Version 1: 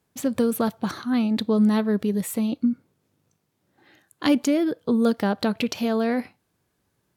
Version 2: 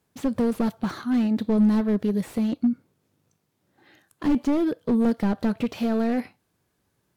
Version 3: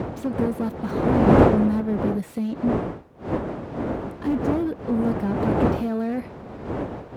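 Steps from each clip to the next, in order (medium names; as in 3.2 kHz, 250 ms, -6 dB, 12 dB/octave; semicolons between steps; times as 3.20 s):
slew-rate limiter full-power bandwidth 41 Hz
wind noise 470 Hz -22 dBFS; high-pass 59 Hz; dynamic bell 4.7 kHz, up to -7 dB, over -46 dBFS, Q 0.74; trim -2 dB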